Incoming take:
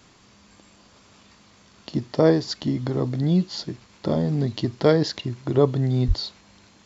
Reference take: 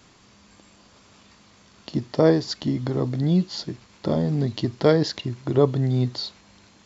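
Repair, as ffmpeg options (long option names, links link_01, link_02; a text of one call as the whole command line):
ffmpeg -i in.wav -filter_complex "[0:a]asplit=3[link_01][link_02][link_03];[link_01]afade=type=out:start_time=6.07:duration=0.02[link_04];[link_02]highpass=frequency=140:width=0.5412,highpass=frequency=140:width=1.3066,afade=type=in:start_time=6.07:duration=0.02,afade=type=out:start_time=6.19:duration=0.02[link_05];[link_03]afade=type=in:start_time=6.19:duration=0.02[link_06];[link_04][link_05][link_06]amix=inputs=3:normalize=0" out.wav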